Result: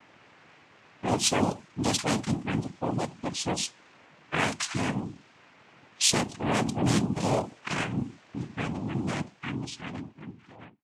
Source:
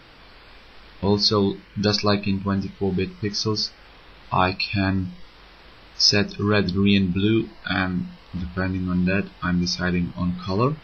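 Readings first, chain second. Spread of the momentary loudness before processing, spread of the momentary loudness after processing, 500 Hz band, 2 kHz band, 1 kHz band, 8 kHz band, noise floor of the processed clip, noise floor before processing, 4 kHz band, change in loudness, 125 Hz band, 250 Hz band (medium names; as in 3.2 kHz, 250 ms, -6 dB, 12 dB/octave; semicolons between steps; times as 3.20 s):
9 LU, 13 LU, -8.0 dB, -7.0 dB, -4.5 dB, no reading, -58 dBFS, -48 dBFS, -8.0 dB, -6.5 dB, -8.0 dB, -7.5 dB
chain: fade out at the end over 2.37 s; noise-vocoded speech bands 4; level-controlled noise filter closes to 3 kHz, open at -17 dBFS; trim -6 dB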